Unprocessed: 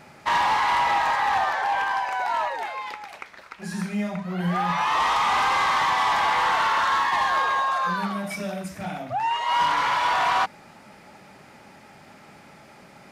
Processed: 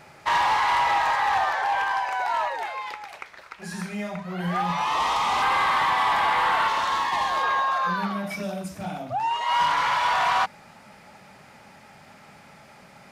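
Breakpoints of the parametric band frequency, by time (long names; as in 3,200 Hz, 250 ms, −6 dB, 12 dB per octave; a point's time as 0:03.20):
parametric band −7 dB 0.72 octaves
230 Hz
from 0:04.62 1,600 Hz
from 0:05.42 6,000 Hz
from 0:06.68 1,500 Hz
from 0:07.43 8,600 Hz
from 0:08.43 1,900 Hz
from 0:09.41 330 Hz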